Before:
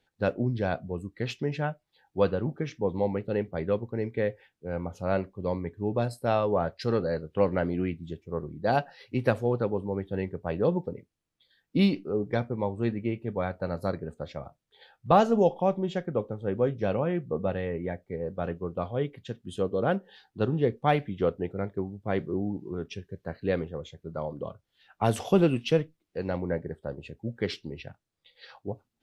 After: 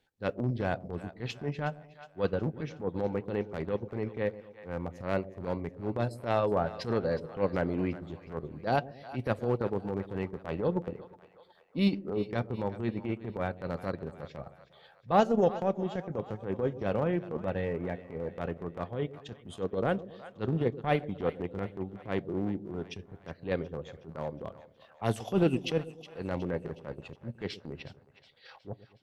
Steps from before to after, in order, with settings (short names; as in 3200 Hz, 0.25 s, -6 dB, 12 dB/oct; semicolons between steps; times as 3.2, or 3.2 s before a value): transient shaper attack -12 dB, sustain -8 dB; split-band echo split 600 Hz, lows 0.117 s, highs 0.366 s, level -15 dB